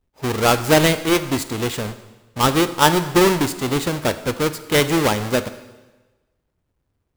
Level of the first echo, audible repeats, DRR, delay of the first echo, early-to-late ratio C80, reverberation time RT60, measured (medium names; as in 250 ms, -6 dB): no echo, no echo, 11.0 dB, no echo, 14.5 dB, 1.2 s